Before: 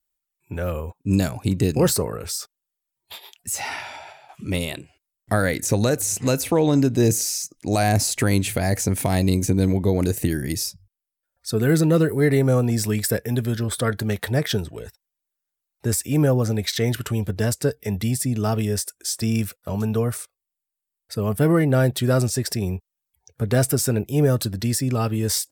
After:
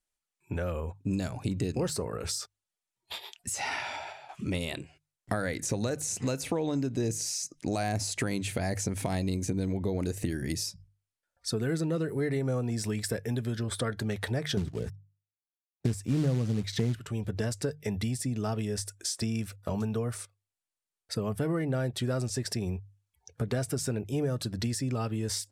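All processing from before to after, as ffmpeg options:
ffmpeg -i in.wav -filter_complex "[0:a]asettb=1/sr,asplit=3[link_01][link_02][link_03];[link_01]atrim=end=14.574[link_04];[link_02]atrim=start=14.57:end=16.95,asetpts=PTS-STARTPTS,afade=type=in:duration=0.004:curve=qsin,afade=type=out:start_time=2.376:duration=0.004:curve=qsin,agate=range=-28dB:threshold=-39dB:ratio=16:release=100:detection=peak,equalizer=frequency=160:width_type=o:width=2.6:gain=14.5,acrusher=bits=5:mode=log:mix=0:aa=0.000001[link_05];[link_03]atrim=start=16.946[link_06];[link_04][link_05]acrossfade=duration=0.004:curve1=hsin:curve2=qsin[link_07];[link_07][link_06]acrossfade=duration=0.004:curve1=qsin:curve2=hsin,bandreject=frequency=50:width_type=h:width=6,bandreject=frequency=100:width_type=h:width=6,bandreject=frequency=150:width_type=h:width=6,acompressor=threshold=-29dB:ratio=4,lowpass=8700" out.wav

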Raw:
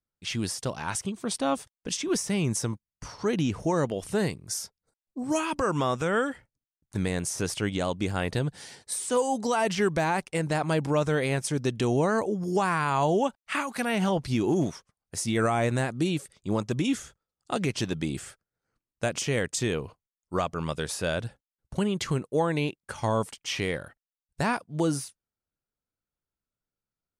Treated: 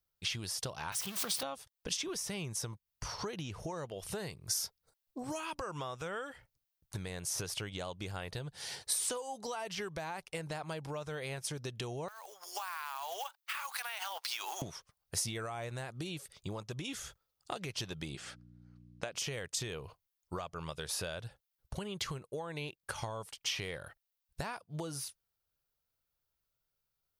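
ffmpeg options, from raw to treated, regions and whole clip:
ffmpeg -i in.wav -filter_complex "[0:a]asettb=1/sr,asplit=3[link_01][link_02][link_03];[link_01]atrim=end=0.924[link_04];[link_02]atrim=start=0.92:end=1.43,asetpts=PTS-STARTPTS,afade=type=in:duration=0.004:curve=qsin,afade=type=out:start_time=0.506:duration=0.004:curve=qsin,aeval=exprs='val(0)+0.5*0.0224*sgn(val(0))':channel_layout=same,highpass=frequency=150:width=0.5412,highpass=frequency=150:width=1.3066,equalizer=frequency=370:width=0.64:gain=-8.5[link_05];[link_03]atrim=start=1.426[link_06];[link_04][link_05]acrossfade=duration=0.004:curve1=hsin:curve2=qsin[link_07];[link_07][link_06]acrossfade=duration=0.004:curve1=qsin:curve2=hsin,asettb=1/sr,asplit=3[link_08][link_09][link_10];[link_08]atrim=end=12.084[link_11];[link_09]atrim=start=12.08:end=14.62,asetpts=PTS-STARTPTS,afade=type=in:duration=0.004:curve=qsin,afade=type=out:start_time=2.536:duration=0.004:curve=qsin,highpass=frequency=860:width=0.5412,highpass=frequency=860:width=1.3066,acompressor=threshold=-36dB:ratio=12:attack=3.2:release=140:knee=1:detection=peak,acrusher=bits=3:mode=log:mix=0:aa=0.000001[link_12];[link_10]atrim=start=14.616[link_13];[link_11][link_12]acrossfade=duration=0.004:curve1=hsin:curve2=qsin[link_14];[link_14][link_13]acrossfade=duration=0.004:curve1=qsin:curve2=hsin,asettb=1/sr,asplit=3[link_15][link_16][link_17];[link_15]atrim=end=18.154[link_18];[link_16]atrim=start=18.15:end=19.15,asetpts=PTS-STARTPTS,afade=type=in:duration=0.004:curve=qsin,afade=type=out:start_time=0.996:duration=0.004:curve=qsin,aeval=exprs='val(0)+0.00501*(sin(2*PI*60*n/s)+sin(2*PI*2*60*n/s)/2+sin(2*PI*3*60*n/s)/3+sin(2*PI*4*60*n/s)/4+sin(2*PI*5*60*n/s)/5)':channel_layout=same,highpass=180,lowpass=5600[link_19];[link_17]atrim=start=19.146[link_20];[link_18][link_19]acrossfade=duration=0.004:curve1=hsin:curve2=qsin[link_21];[link_21][link_20]acrossfade=duration=0.004:curve1=qsin:curve2=hsin,equalizer=frequency=250:width_type=o:width=1:gain=-11,equalizer=frequency=2000:width_type=o:width=1:gain=-3,equalizer=frequency=8000:width_type=o:width=1:gain=-10,acompressor=threshold=-41dB:ratio=16,highshelf=frequency=3200:gain=9.5,volume=3.5dB" out.wav

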